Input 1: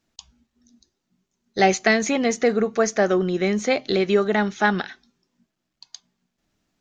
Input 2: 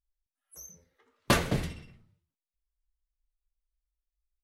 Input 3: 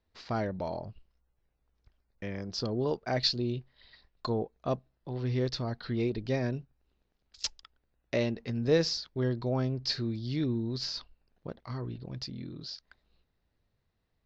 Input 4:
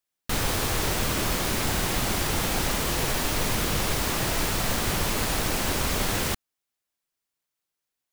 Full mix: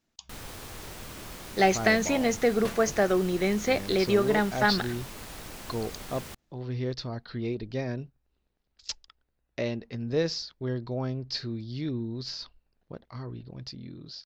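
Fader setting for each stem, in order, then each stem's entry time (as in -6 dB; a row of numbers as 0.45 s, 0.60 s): -4.5 dB, -14.0 dB, -1.5 dB, -16.0 dB; 0.00 s, 1.35 s, 1.45 s, 0.00 s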